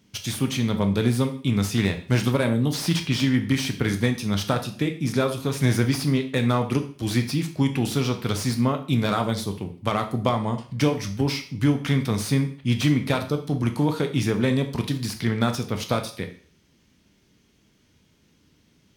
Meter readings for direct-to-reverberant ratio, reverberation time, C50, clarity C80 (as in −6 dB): 6.0 dB, 0.50 s, 11.5 dB, 15.5 dB